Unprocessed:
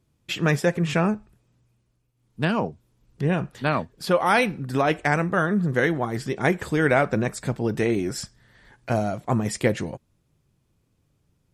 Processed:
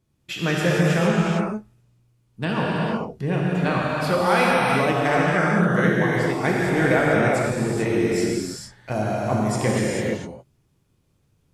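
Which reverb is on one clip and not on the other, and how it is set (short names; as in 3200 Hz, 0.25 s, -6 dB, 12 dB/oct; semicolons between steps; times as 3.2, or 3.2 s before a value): non-linear reverb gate 0.48 s flat, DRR -5.5 dB; gain -3.5 dB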